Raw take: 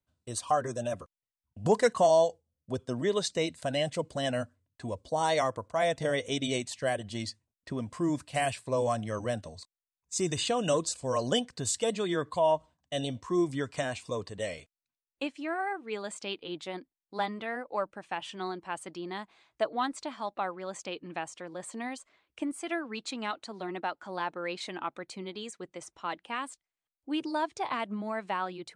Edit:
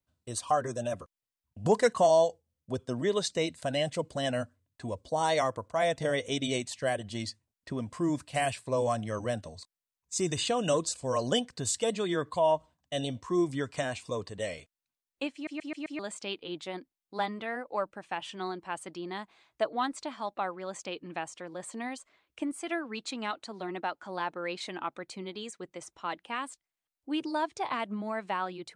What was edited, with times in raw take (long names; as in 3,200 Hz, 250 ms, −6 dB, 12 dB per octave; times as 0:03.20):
0:15.34: stutter in place 0.13 s, 5 plays